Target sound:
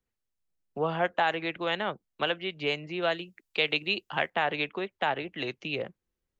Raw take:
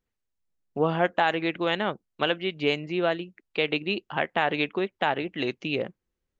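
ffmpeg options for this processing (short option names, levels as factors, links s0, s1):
-filter_complex "[0:a]asettb=1/sr,asplit=3[s0][s1][s2];[s0]atrim=end=3.024[s3];[s1]atrim=start=3.02:end=4.3,asetpts=PTS-STARTPTS,afade=t=in:d=0.004:c=qsin,afade=t=out:st=1.276:d=0.004:c=qsin,highshelf=f=3600:g=11[s4];[s2]atrim=start=4.296[s5];[s3][s4]acrossfade=d=0.004:c1=hsin:c2=qsin[s6];[s6][s5]acrossfade=d=0.004:c1=qsin:c2=hsin,acrossover=split=170|380|2100[s7][s8][s9][s10];[s8]acompressor=threshold=0.00631:ratio=6[s11];[s7][s11][s9][s10]amix=inputs=4:normalize=0,volume=0.75"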